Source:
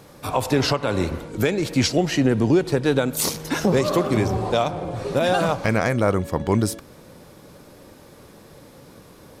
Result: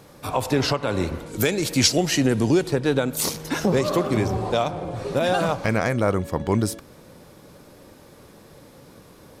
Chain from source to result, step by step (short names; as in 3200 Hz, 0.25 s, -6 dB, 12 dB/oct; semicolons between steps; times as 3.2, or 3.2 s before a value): 1.26–2.68 high shelf 4200 Hz +12 dB; gain -1.5 dB